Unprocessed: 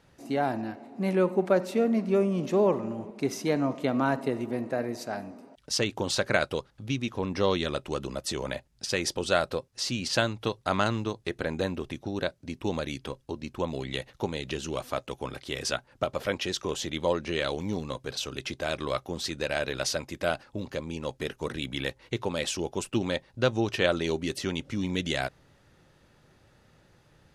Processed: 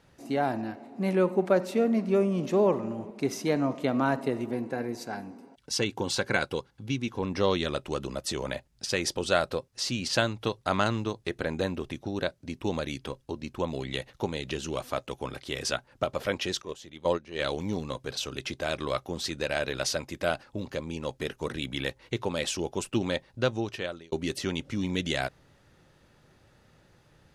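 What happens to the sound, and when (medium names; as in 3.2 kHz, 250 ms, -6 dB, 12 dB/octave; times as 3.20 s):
4.54–7.22 s: comb of notches 620 Hz
16.62–17.40 s: gate -29 dBFS, range -14 dB
23.31–24.12 s: fade out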